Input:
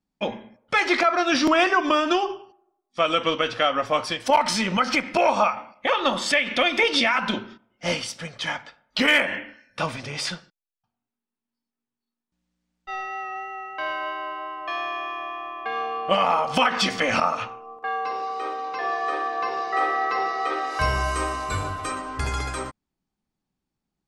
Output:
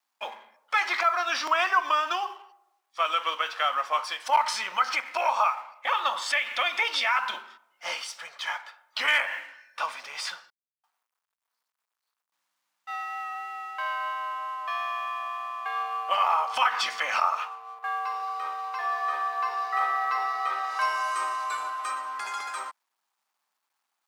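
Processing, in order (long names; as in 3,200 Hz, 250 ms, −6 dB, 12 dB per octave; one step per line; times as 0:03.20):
mu-law and A-law mismatch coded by mu
high-pass with resonance 1,000 Hz, resonance Q 1.9
level −6.5 dB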